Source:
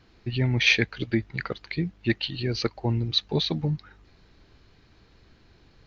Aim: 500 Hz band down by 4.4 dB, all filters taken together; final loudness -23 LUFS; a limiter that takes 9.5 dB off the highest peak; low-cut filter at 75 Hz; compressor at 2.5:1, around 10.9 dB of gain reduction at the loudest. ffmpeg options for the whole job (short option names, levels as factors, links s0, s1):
-af "highpass=75,equalizer=f=500:t=o:g=-6.5,acompressor=threshold=0.0224:ratio=2.5,volume=5.31,alimiter=limit=0.237:level=0:latency=1"